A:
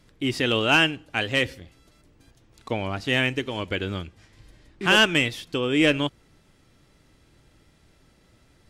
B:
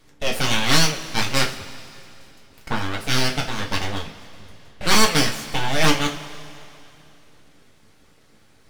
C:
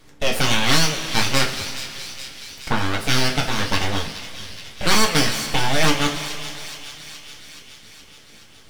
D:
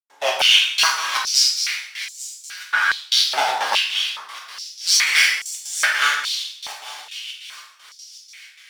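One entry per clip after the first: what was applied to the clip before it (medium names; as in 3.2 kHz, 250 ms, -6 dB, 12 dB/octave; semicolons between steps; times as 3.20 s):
full-wave rectifier; harmonic-percussive split percussive +5 dB; two-slope reverb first 0.3 s, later 2.8 s, from -18 dB, DRR 0.5 dB
compression 2:1, threshold -19 dBFS, peak gain reduction 6.5 dB; feedback echo behind a high-pass 422 ms, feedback 67%, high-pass 2.5 kHz, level -9.5 dB; trim +4.5 dB
trance gate ".xx.xx..x.xx" 154 bpm -60 dB; plate-style reverb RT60 0.78 s, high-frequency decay 0.8×, DRR -3 dB; step-sequenced high-pass 2.4 Hz 810–7200 Hz; trim -3 dB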